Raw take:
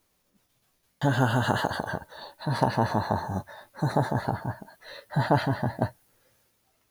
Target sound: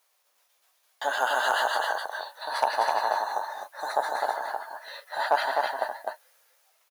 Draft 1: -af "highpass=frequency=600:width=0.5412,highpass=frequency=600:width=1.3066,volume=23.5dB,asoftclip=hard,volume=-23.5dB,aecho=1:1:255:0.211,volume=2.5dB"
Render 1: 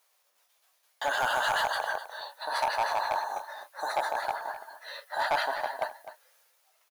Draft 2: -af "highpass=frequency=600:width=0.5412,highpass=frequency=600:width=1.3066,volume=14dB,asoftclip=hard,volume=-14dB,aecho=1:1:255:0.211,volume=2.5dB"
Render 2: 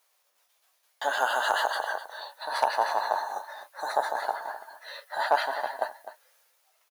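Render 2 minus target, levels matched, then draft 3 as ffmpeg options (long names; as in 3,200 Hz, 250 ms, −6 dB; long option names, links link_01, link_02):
echo-to-direct −10 dB
-af "highpass=frequency=600:width=0.5412,highpass=frequency=600:width=1.3066,volume=14dB,asoftclip=hard,volume=-14dB,aecho=1:1:255:0.668,volume=2.5dB"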